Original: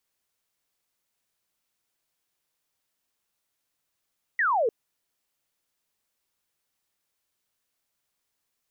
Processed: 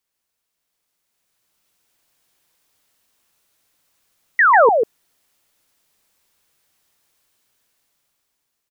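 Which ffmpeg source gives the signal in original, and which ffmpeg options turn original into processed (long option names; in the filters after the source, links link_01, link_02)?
-f lavfi -i "aevalsrc='0.0944*clip(t/0.002,0,1)*clip((0.3-t)/0.002,0,1)*sin(2*PI*2000*0.3/log(420/2000)*(exp(log(420/2000)*t/0.3)-1))':duration=0.3:sample_rate=44100"
-af "dynaudnorm=framelen=550:gausssize=5:maxgain=11.5dB,aecho=1:1:145:0.668"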